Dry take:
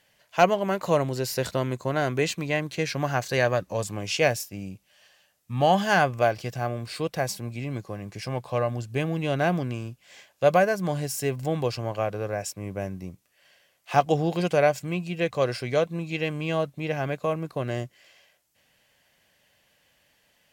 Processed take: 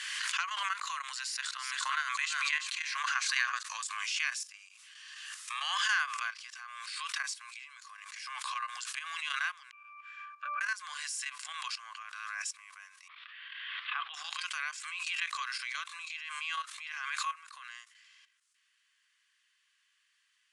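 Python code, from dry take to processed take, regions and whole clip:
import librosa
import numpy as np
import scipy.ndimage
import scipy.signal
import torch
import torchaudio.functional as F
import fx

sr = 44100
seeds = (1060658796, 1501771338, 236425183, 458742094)

y = fx.chain(x, sr, fx.low_shelf(hz=84.0, db=-10.5),
    fx.echo_single(ms=341, db=-10.0),
    fx.sustainer(db_per_s=74.0), at=(1.19, 3.63))
y = fx.chain(y, sr, fx.peak_eq(hz=1600.0, db=13.5, octaves=0.54),
    fx.octave_resonator(note='D', decay_s=0.58), at=(9.71, 10.61))
y = fx.chain(y, sr, fx.ellip_lowpass(hz=3600.0, order=4, stop_db=50),
    fx.sustainer(db_per_s=57.0), at=(13.08, 14.14))
y = fx.level_steps(y, sr, step_db=12)
y = scipy.signal.sosfilt(scipy.signal.cheby1(5, 1.0, [1100.0, 10000.0], 'bandpass', fs=sr, output='sos'), y)
y = fx.pre_swell(y, sr, db_per_s=26.0)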